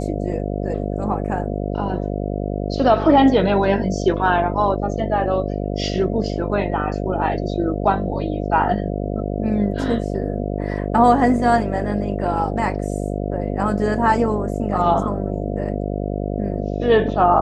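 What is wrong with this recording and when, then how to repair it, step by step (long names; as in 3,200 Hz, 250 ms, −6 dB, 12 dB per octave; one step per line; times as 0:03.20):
mains buzz 50 Hz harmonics 14 −24 dBFS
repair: hum removal 50 Hz, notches 14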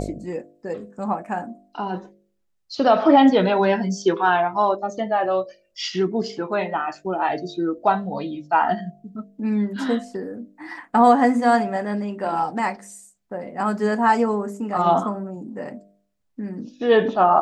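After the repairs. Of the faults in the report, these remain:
none of them is left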